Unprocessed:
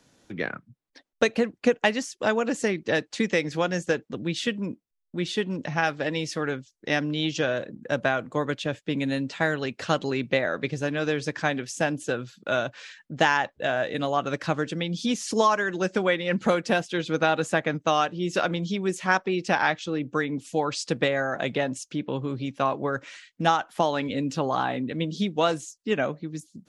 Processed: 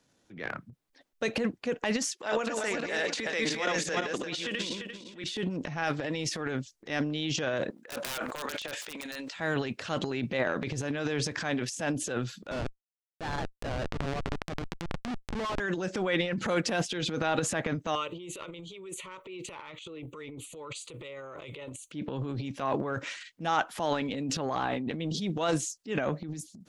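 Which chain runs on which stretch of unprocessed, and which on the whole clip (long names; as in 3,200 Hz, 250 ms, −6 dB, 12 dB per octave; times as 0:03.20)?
0:02.12–0:05.24: feedback delay that plays each chunk backwards 172 ms, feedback 42%, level −2 dB + meter weighting curve A + upward compression, threshold −47 dBFS
0:07.70–0:09.36: high-pass filter 750 Hz + wrap-around overflow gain 23 dB + level that may fall only so fast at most 66 dB per second
0:12.51–0:15.60: high-pass filter 67 Hz + comparator with hysteresis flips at −24 dBFS + high-frequency loss of the air 110 metres
0:17.95–0:21.92: high-shelf EQ 4,200 Hz +8 dB + downward compressor 12 to 1, threshold −29 dBFS + phaser with its sweep stopped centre 1,100 Hz, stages 8
whole clip: automatic gain control gain up to 3 dB; transient designer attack −6 dB, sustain +12 dB; level −8.5 dB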